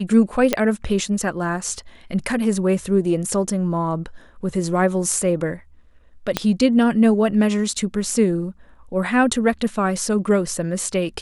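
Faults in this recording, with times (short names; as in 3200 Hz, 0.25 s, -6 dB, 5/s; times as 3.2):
0.53 pop -3 dBFS
6.37 pop -4 dBFS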